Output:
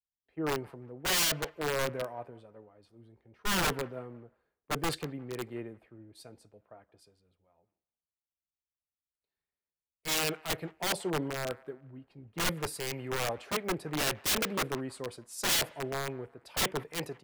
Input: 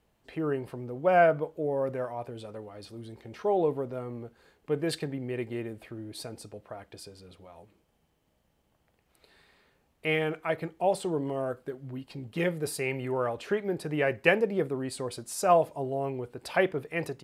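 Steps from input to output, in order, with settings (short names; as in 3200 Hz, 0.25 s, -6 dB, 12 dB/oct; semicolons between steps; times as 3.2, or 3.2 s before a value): wrapped overs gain 23 dB; band-limited delay 0.178 s, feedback 47%, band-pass 1200 Hz, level -18 dB; three-band expander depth 100%; gain -3 dB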